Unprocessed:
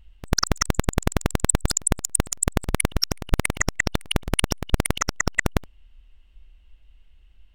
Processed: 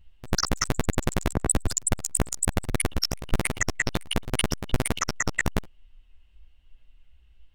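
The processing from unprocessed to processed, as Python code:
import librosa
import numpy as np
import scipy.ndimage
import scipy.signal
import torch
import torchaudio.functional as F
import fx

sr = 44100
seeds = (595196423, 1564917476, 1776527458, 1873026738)

y = fx.chorus_voices(x, sr, voices=2, hz=1.1, base_ms=12, depth_ms=4.1, mix_pct=45)
y = fx.band_widen(y, sr, depth_pct=100, at=(1.33, 1.85))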